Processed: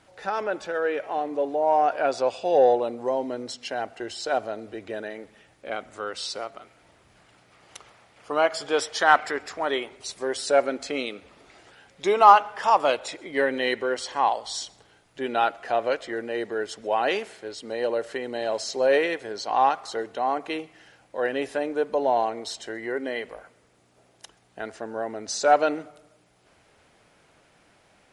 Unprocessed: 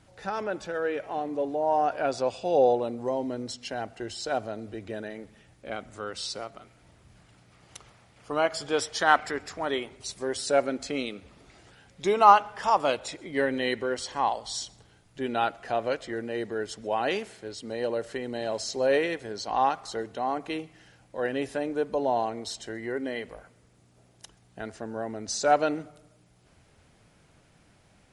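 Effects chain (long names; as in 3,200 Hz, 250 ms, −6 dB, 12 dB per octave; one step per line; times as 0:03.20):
bass and treble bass −12 dB, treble −4 dB
in parallel at −6 dB: soft clipping −16 dBFS, distortion −12 dB
on the sum: level +1 dB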